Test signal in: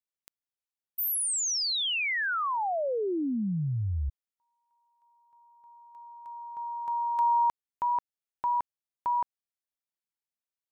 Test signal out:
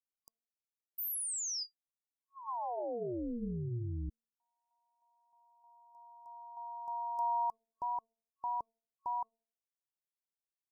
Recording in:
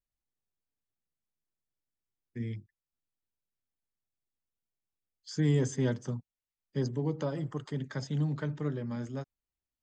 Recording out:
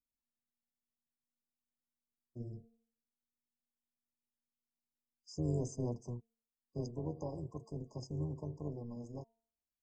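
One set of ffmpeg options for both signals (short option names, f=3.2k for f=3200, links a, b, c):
-af "bandreject=f=226.8:t=h:w=4,bandreject=f=453.6:t=h:w=4,bandreject=f=680.4:t=h:w=4,tremolo=f=240:d=0.75,afftfilt=real='re*(1-between(b*sr/4096,1100,4800))':imag='im*(1-between(b*sr/4096,1100,4800))':win_size=4096:overlap=0.75,volume=-5dB"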